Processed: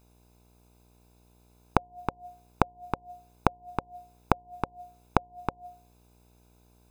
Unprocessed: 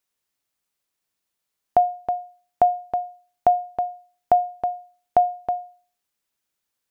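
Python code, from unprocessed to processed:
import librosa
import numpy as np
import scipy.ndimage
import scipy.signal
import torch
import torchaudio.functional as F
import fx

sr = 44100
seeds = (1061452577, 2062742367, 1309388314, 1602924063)

y = fx.gate_flip(x, sr, shuts_db=-18.0, range_db=-34)
y = y + 0.69 * np.pad(y, (int(0.8 * sr / 1000.0), 0))[:len(y)]
y = fx.dmg_buzz(y, sr, base_hz=60.0, harmonics=17, level_db=-70.0, tilt_db=-5, odd_only=False)
y = fx.notch(y, sr, hz=540.0, q=12.0)
y = F.gain(torch.from_numpy(y), 8.5).numpy()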